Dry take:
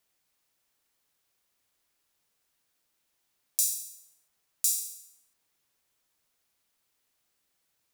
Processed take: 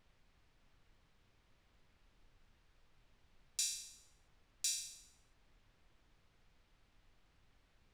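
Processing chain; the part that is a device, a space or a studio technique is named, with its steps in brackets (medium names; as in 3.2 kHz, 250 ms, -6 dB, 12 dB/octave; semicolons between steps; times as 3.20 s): aircraft cabin announcement (band-pass 430–3200 Hz; saturation -28 dBFS, distortion -23 dB; brown noise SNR 18 dB); trim +6.5 dB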